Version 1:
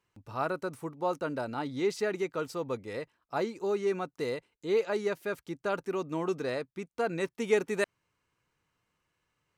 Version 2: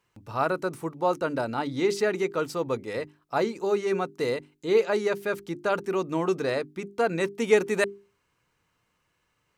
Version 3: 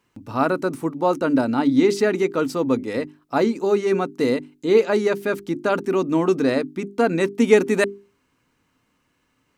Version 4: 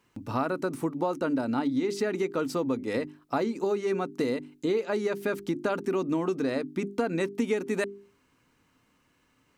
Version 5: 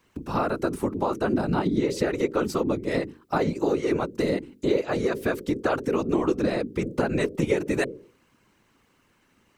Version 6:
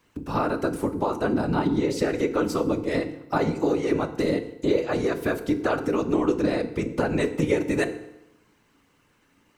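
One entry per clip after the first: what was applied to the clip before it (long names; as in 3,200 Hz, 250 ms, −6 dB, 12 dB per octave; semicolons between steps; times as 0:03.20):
mains-hum notches 50/100/150/200/250/300/350/400 Hz; level +6 dB
parametric band 260 Hz +14 dB 0.46 octaves; level +4 dB
downward compressor 6 to 1, threshold −25 dBFS, peak gain reduction 15.5 dB
random phases in short frames; level +3.5 dB
feedback delay network reverb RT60 0.89 s, low-frequency decay 1×, high-frequency decay 0.8×, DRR 8.5 dB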